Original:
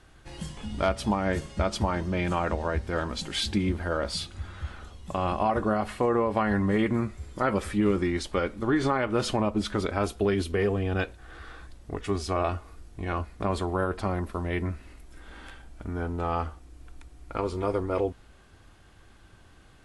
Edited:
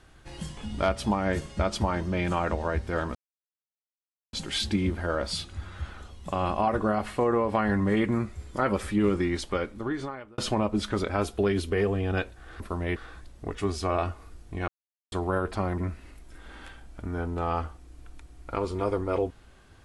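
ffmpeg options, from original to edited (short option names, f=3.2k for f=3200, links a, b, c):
-filter_complex "[0:a]asplit=8[a][b][c][d][e][f][g][h];[a]atrim=end=3.15,asetpts=PTS-STARTPTS,afade=t=out:st=3.146:d=0.004:c=hsin,apad=pad_dur=1.18[i];[b]atrim=start=3.15:end=9.2,asetpts=PTS-STARTPTS,afade=t=in:d=0.004:c=hsin,afade=t=out:st=5.08:d=0.97[j];[c]atrim=start=9.2:end=11.422,asetpts=PTS-STARTPTS,afade=t=in:d=0.004:c=hsin[k];[d]atrim=start=14.238:end=14.602[l];[e]atrim=start=11.418:end=13.14,asetpts=PTS-STARTPTS,afade=t=out:st=1.718:d=0.004:c=hsin[m];[f]atrim=start=13.14:end=13.58,asetpts=PTS-STARTPTS,volume=0[n];[g]atrim=start=13.58:end=14.242,asetpts=PTS-STARTPTS,afade=t=in:d=0.004:c=hsin[o];[h]atrim=start=14.598[p];[i][j][k]concat=n=3:v=0:a=1[q];[q][l]acrossfade=d=0.004:c1=hsin:c2=hsin[r];[m][n][o]concat=n=3:v=0:a=1[s];[r][s]acrossfade=d=0.004:c1=hsin:c2=hsin[t];[t][p]acrossfade=d=0.004:c1=hsin:c2=hsin"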